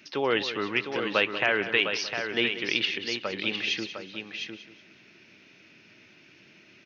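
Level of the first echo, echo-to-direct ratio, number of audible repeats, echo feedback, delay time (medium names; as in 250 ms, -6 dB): -13.0 dB, -5.5 dB, 6, no regular repeats, 186 ms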